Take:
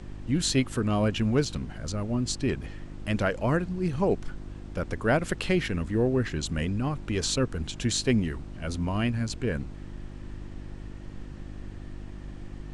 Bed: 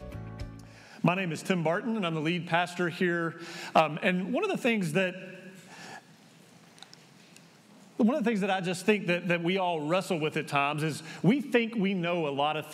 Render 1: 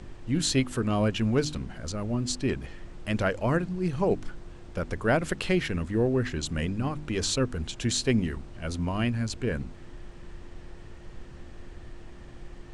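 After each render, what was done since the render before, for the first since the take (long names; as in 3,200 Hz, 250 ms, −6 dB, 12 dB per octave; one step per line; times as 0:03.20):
hum removal 50 Hz, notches 6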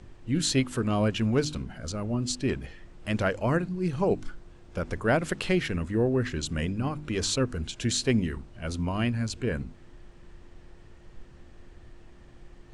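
noise reduction from a noise print 6 dB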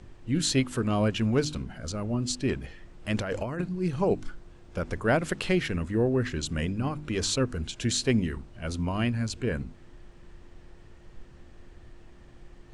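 0:03.17–0:03.61: compressor whose output falls as the input rises −31 dBFS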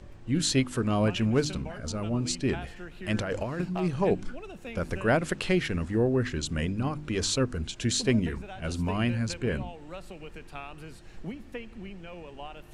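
mix in bed −14.5 dB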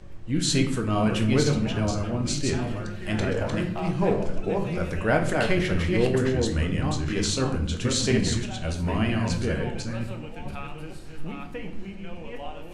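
delay that plays each chunk backwards 478 ms, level −3 dB
rectangular room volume 110 cubic metres, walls mixed, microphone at 0.56 metres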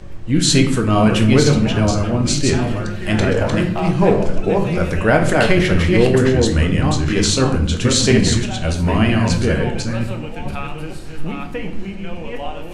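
level +9.5 dB
brickwall limiter −2 dBFS, peak gain reduction 2.5 dB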